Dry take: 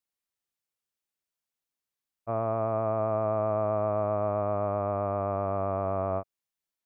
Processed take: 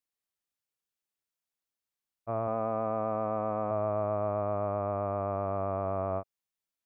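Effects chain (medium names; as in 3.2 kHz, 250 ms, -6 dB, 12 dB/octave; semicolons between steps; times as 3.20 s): 2.47–3.71 s: comb 4 ms, depth 54%; trim -2.5 dB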